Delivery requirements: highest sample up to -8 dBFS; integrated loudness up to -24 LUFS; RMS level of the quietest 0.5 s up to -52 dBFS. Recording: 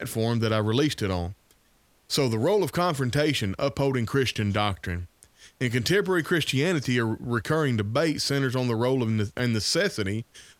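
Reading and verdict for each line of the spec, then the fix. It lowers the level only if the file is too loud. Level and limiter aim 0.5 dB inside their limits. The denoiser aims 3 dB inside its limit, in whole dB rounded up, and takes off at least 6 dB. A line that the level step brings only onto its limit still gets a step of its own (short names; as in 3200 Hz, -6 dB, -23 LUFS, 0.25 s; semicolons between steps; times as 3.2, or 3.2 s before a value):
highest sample -8.5 dBFS: OK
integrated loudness -25.5 LUFS: OK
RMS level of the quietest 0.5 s -63 dBFS: OK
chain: none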